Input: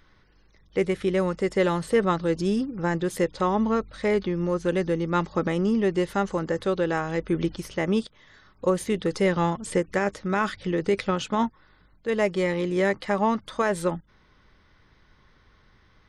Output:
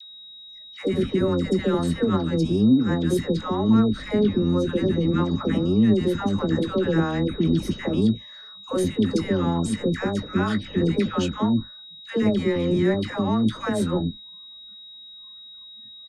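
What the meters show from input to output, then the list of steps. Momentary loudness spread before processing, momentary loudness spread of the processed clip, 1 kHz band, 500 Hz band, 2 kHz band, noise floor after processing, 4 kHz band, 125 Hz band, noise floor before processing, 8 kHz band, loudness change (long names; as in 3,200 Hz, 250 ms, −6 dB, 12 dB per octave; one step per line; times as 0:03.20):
4 LU, 21 LU, −4.0 dB, −0.5 dB, −3.5 dB, −44 dBFS, +6.0 dB, +6.0 dB, −60 dBFS, −0.5 dB, +3.0 dB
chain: sub-octave generator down 1 octave, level −1 dB
brickwall limiter −21 dBFS, peak gain reduction 11 dB
noise reduction from a noise print of the clip's start 20 dB
parametric band 250 Hz +14 dB 1.2 octaves
double-tracking delay 19 ms −10.5 dB
steady tone 3,800 Hz −41 dBFS
parametric band 1,400 Hz +4.5 dB 0.81 octaves
all-pass dispersion lows, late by 114 ms, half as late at 760 Hz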